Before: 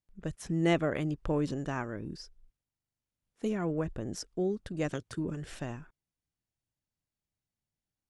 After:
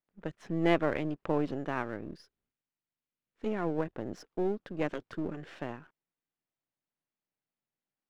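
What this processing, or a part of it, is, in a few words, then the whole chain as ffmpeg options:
crystal radio: -filter_complex "[0:a]highpass=230,lowpass=2700,aeval=exprs='if(lt(val(0),0),0.447*val(0),val(0))':c=same,asettb=1/sr,asplit=3[s0][s1][s2];[s0]atrim=end=2.134[s3];[s1]atrim=start=2.13:end=3.46,asetpts=PTS-STARTPTS,afade=t=in:d=0.004:c=qsin,afade=t=out:st=1.326:d=0.004:c=qsin,equalizer=f=680:t=o:w=1.9:g=-5.5[s4];[s2]atrim=start=3.456[s5];[s3][s4]acrossfade=d=0.004:c1=hsin:c2=qsin[s6];[s6][s5]acrossfade=d=0.004:c1=qsin:c2=hsin,volume=1.5"

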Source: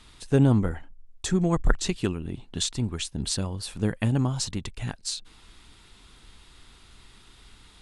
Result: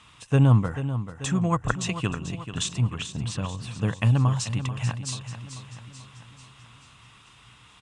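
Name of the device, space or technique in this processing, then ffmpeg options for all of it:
car door speaker: -filter_complex "[0:a]asettb=1/sr,asplit=3[s0][s1][s2];[s0]atrim=end=2.944[s3];[s1]atrim=start=2.94:end=3.81,asetpts=PTS-STARTPTS,afade=t=in:d=0.004:c=qsin,afade=t=out:st=0.866:d=0.004:c=qsin,highshelf=f=5200:g=-11[s4];[s2]atrim=start=3.806[s5];[s3][s4]acrossfade=d=0.004:c1=hsin:c2=qsin[s6];[s6][s5]acrossfade=d=0.004:c1=qsin:c2=hsin,highpass=92,equalizer=f=120:t=q:w=4:g=9,equalizer=f=240:t=q:w=4:g=-4,equalizer=f=370:t=q:w=4:g=-9,equalizer=f=1100:t=q:w=4:g=9,equalizer=f=2700:t=q:w=4:g=7,equalizer=f=4400:t=q:w=4:g=-8,lowpass=f=9300:w=0.5412,lowpass=f=9300:w=1.3066,aecho=1:1:438|876|1314|1752|2190|2628:0.282|0.152|0.0822|0.0444|0.024|0.0129"

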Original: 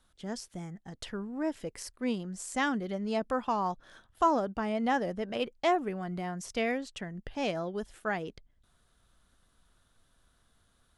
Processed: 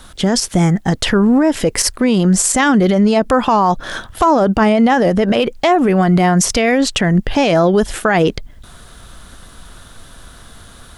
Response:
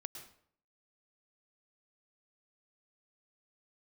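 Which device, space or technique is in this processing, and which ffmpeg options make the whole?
loud club master: -af "acompressor=threshold=0.0224:ratio=2.5,asoftclip=type=hard:threshold=0.0631,alimiter=level_in=47.3:limit=0.891:release=50:level=0:latency=1,volume=0.631"

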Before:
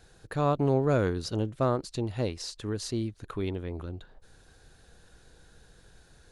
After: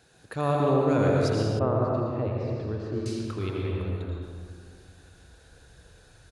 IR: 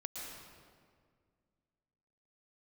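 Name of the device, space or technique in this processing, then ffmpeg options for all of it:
PA in a hall: -filter_complex "[0:a]highpass=100,equalizer=f=2600:t=o:w=0.23:g=3.5,aecho=1:1:83:0.355[s0];[1:a]atrim=start_sample=2205[s1];[s0][s1]afir=irnorm=-1:irlink=0,asettb=1/sr,asplit=3[s2][s3][s4];[s2]atrim=end=1.594[s5];[s3]atrim=start=1.59:end=3.06,asetpts=PTS-STARTPTS,afade=t=in:d=0.004:c=qsin,afade=t=out:st=1.466:d=0.004:c=qsin,lowpass=1500[s6];[s4]atrim=start=3.056[s7];[s5][s6]acrossfade=d=0.004:c1=hsin:c2=qsin[s8];[s8][s7]acrossfade=d=0.004:c1=qsin:c2=hsin,asubboost=boost=6:cutoff=76,volume=1.5"

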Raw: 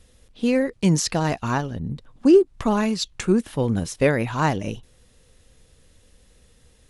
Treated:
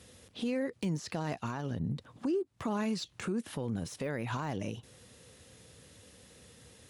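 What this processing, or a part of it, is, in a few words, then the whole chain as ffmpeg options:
podcast mastering chain: -af "highpass=f=87:w=0.5412,highpass=f=87:w=1.3066,deesser=0.75,acompressor=threshold=0.0282:ratio=4,alimiter=level_in=1.68:limit=0.0631:level=0:latency=1:release=108,volume=0.596,volume=1.5" -ar 48000 -c:a libmp3lame -b:a 112k

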